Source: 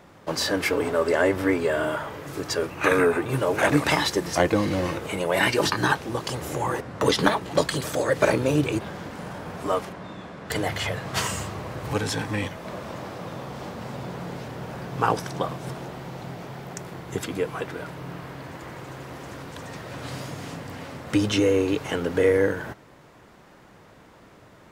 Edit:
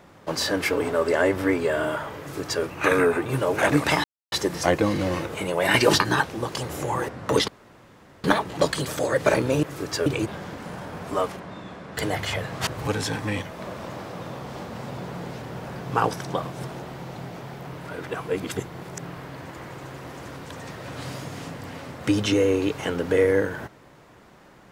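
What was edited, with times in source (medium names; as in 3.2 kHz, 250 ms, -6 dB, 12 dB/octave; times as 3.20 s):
2.20–2.63 s: copy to 8.59 s
4.04 s: insert silence 0.28 s
5.46–5.75 s: gain +4.5 dB
7.20 s: insert room tone 0.76 s
11.20–11.73 s: delete
16.73–18.08 s: reverse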